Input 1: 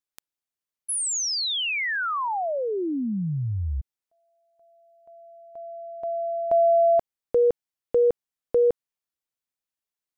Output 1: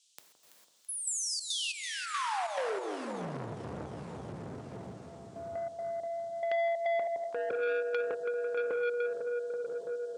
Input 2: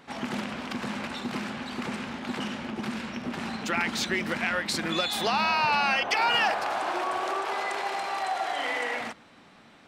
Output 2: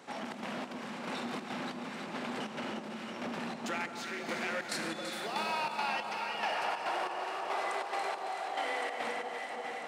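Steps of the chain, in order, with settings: plate-style reverb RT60 4.5 s, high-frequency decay 0.9×, DRR 1.5 dB; trance gate "xxx.xx...." 140 bpm -12 dB; dynamic bell 9.2 kHz, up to +4 dB, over -51 dBFS, Q 1.9; level rider gain up to 7.5 dB; Bessel high-pass 160 Hz, order 6; echo whose repeats swap between lows and highs 166 ms, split 1.2 kHz, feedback 76%, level -10 dB; compression 2.5:1, threshold -37 dBFS; peaking EQ 570 Hz +4.5 dB 1.5 oct; band noise 3–8.8 kHz -66 dBFS; transformer saturation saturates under 1.5 kHz; trim -3 dB

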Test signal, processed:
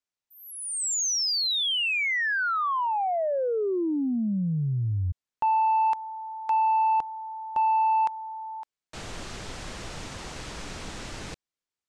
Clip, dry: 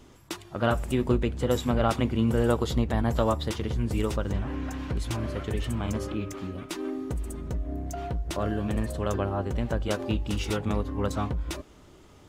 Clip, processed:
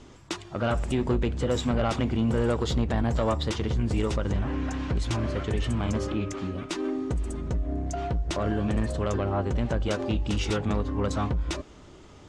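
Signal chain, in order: low-pass 8.1 kHz 24 dB/octave; in parallel at +3 dB: peak limiter -20 dBFS; on the sum: saturation -13 dBFS; trim -4 dB

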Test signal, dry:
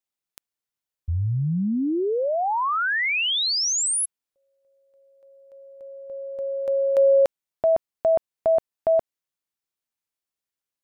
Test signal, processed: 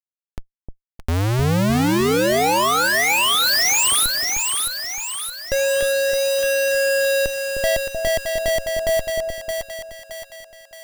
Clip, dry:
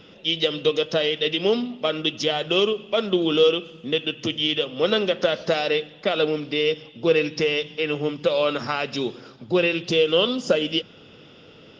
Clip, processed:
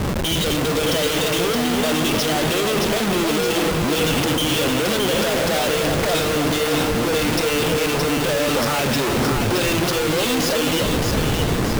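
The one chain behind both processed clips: peak limiter -18.5 dBFS; Schmitt trigger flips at -44 dBFS; two-band feedback delay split 720 Hz, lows 307 ms, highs 620 ms, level -4 dB; trim +8 dB

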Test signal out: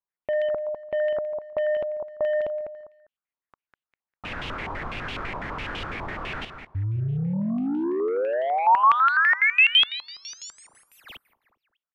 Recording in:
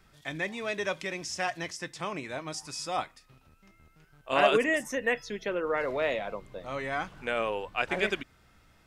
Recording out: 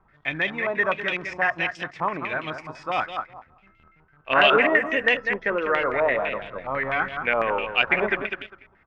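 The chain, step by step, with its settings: feedback delay 200 ms, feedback 25%, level -8.5 dB; waveshaping leveller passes 1; step-sequenced low-pass 12 Hz 990–3000 Hz

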